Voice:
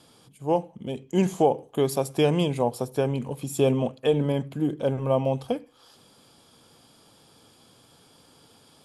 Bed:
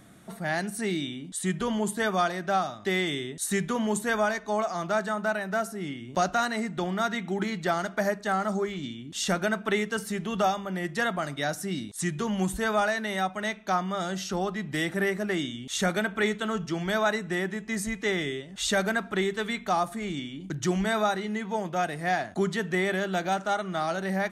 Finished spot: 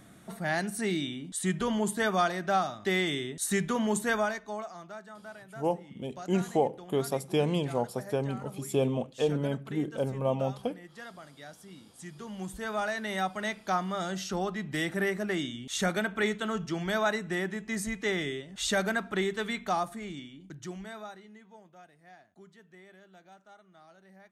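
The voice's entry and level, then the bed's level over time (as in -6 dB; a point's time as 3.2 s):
5.15 s, -5.5 dB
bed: 4.11 s -1 dB
4.99 s -18 dB
11.84 s -18 dB
13.14 s -2.5 dB
19.66 s -2.5 dB
21.94 s -27.5 dB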